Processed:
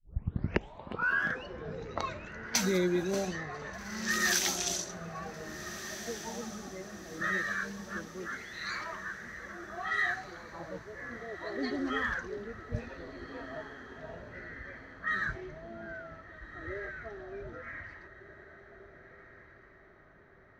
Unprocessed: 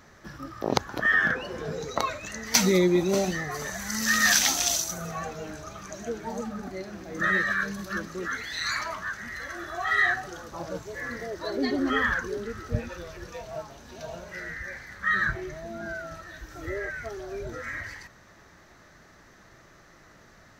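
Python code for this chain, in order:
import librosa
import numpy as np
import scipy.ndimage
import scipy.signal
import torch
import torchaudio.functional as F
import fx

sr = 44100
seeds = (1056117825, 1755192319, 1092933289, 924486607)

y = fx.tape_start_head(x, sr, length_s=1.3)
y = fx.env_lowpass(y, sr, base_hz=1400.0, full_db=-19.5)
y = fx.echo_diffused(y, sr, ms=1604, feedback_pct=42, wet_db=-12.0)
y = y * 10.0 ** (-7.5 / 20.0)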